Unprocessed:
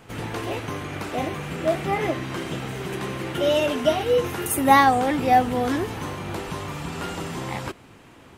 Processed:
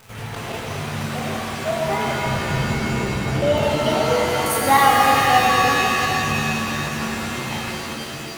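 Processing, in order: bell 310 Hz -13.5 dB 0.59 oct; crackle 310/s -33 dBFS; 2.26–3.63 tilt -3 dB/oct; crackling interface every 0.17 s zero, from 0.35; shimmer reverb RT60 3.5 s, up +7 st, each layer -2 dB, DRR -1.5 dB; gain -1 dB

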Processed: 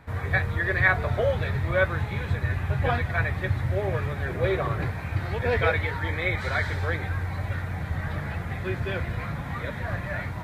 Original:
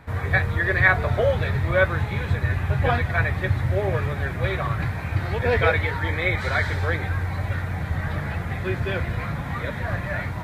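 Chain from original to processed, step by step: 4.28–4.91 bell 430 Hz +10 dB 0.98 oct; gain -3.5 dB

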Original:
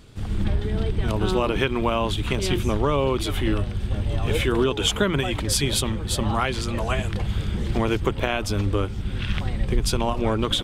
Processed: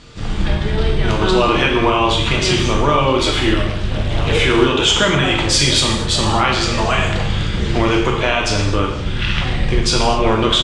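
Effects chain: LPF 7300 Hz 24 dB/oct; low shelf 480 Hz -7 dB; in parallel at +1.5 dB: limiter -19 dBFS, peak gain reduction 11 dB; on the sum: doubler 41 ms -12 dB; non-linear reverb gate 0.29 s falling, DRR -1 dB; 3.67–4.32 Doppler distortion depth 0.45 ms; gain +3 dB

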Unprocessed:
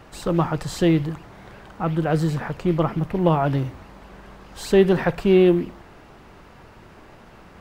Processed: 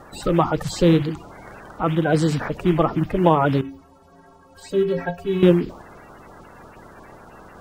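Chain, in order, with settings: bin magnitudes rounded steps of 30 dB; 3.61–5.43 metallic resonator 81 Hz, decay 0.35 s, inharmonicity 0.03; gain +3 dB

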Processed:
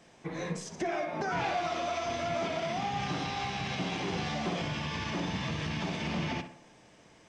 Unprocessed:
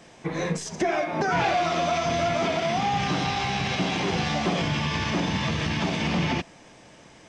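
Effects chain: 1.67–2.24 bell 160 Hz -12.5 dB 0.45 oct; tape echo 60 ms, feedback 55%, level -8 dB, low-pass 2300 Hz; gain -8.5 dB

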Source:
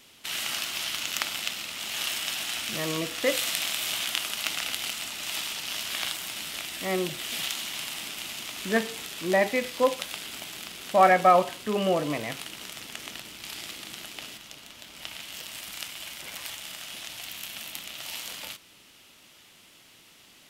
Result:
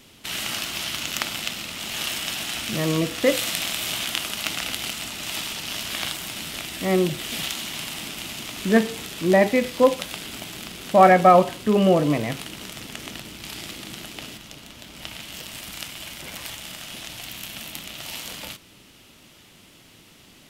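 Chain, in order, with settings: low shelf 420 Hz +11 dB; gain +2 dB

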